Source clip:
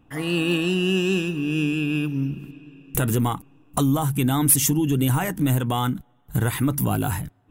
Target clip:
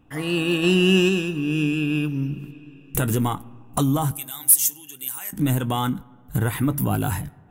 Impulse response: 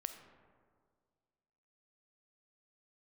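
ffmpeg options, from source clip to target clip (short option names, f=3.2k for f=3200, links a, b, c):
-filter_complex "[0:a]asettb=1/sr,asplit=3[a][b][c];[a]atrim=end=4.114[d];[b]atrim=start=4.11:end=5.33,asetpts=PTS-STARTPTS,afade=t=in:d=0.004:c=qsin,afade=t=out:st=1.216:d=0.004:c=qsin,aderivative[e];[c]atrim=start=5.326[f];[d][e]acrossfade=d=0.004:c1=hsin:c2=qsin[g];[g][f]acrossfade=d=0.004:c1=qsin:c2=hsin,asplit=2[h][i];[1:a]atrim=start_sample=2205,adelay=20[j];[i][j]afir=irnorm=-1:irlink=0,volume=-12.5dB[k];[h][k]amix=inputs=2:normalize=0,asplit=3[l][m][n];[l]afade=t=out:st=0.62:d=0.02[o];[m]acontrast=27,afade=t=in:st=0.62:d=0.02,afade=t=out:st=1.08:d=0.02[p];[n]afade=t=in:st=1.08:d=0.02[q];[o][p][q]amix=inputs=3:normalize=0,asettb=1/sr,asplit=3[r][s][t];[r]atrim=end=6.384[u];[s]atrim=start=6.38:end=6.94,asetpts=PTS-STARTPTS,afade=t=in:d=0.004:c=qsin,afade=t=out:st=0.556:d=0.004:c=qsin,equalizer=f=5.7k:w=0.83:g=-6[v];[t]atrim=start=6.936[w];[u][v]acrossfade=d=0.004:c1=hsin:c2=qsin[x];[x][w]acrossfade=d=0.004:c1=qsin:c2=hsin"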